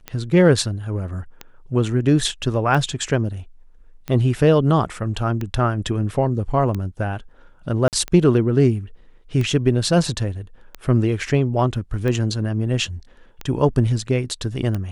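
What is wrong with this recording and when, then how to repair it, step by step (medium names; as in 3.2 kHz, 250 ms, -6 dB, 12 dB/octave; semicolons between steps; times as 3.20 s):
tick 45 rpm -14 dBFS
7.88–7.93 s: dropout 48 ms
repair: de-click; interpolate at 7.88 s, 48 ms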